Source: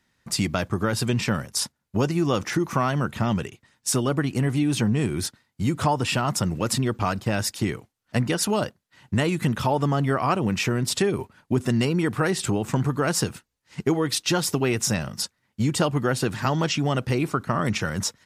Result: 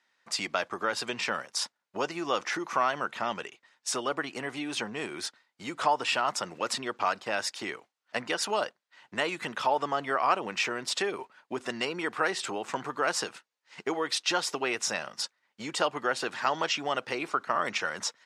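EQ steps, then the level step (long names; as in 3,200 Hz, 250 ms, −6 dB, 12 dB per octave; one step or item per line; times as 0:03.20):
high-pass filter 610 Hz 12 dB per octave
high-frequency loss of the air 77 metres
0.0 dB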